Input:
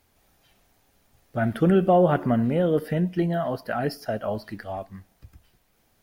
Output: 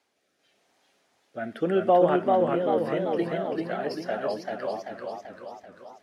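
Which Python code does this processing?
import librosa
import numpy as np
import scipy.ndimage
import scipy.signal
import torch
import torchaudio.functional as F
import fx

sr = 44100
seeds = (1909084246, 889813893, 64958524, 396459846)

y = fx.rotary_switch(x, sr, hz=0.9, then_hz=5.0, switch_at_s=4.19)
y = fx.bandpass_edges(y, sr, low_hz=360.0, high_hz=7500.0)
y = fx.echo_warbled(y, sr, ms=390, feedback_pct=55, rate_hz=2.8, cents=105, wet_db=-3.0)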